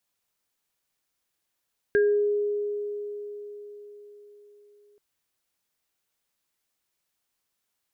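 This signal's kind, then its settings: sine partials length 3.03 s, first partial 413 Hz, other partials 1620 Hz, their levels -6 dB, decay 4.57 s, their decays 0.38 s, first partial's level -17 dB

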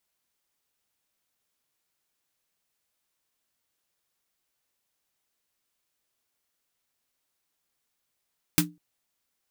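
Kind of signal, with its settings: snare drum length 0.20 s, tones 170 Hz, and 300 Hz, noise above 880 Hz, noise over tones 3 dB, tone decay 0.26 s, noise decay 0.11 s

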